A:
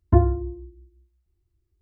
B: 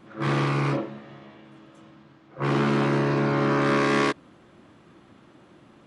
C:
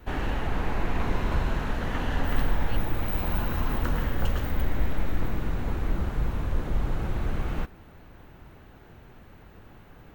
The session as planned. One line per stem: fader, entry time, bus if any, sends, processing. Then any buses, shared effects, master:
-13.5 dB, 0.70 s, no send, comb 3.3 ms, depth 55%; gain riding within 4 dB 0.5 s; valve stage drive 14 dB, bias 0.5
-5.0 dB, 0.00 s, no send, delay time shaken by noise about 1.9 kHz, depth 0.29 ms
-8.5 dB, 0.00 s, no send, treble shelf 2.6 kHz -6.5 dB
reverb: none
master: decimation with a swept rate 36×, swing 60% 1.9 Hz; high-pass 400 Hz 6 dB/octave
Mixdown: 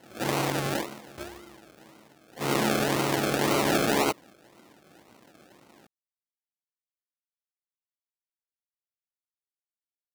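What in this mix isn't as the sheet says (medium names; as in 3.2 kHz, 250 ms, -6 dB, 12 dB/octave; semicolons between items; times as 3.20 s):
stem A: entry 0.70 s -> 1.05 s; stem B -5.0 dB -> +1.0 dB; stem C: muted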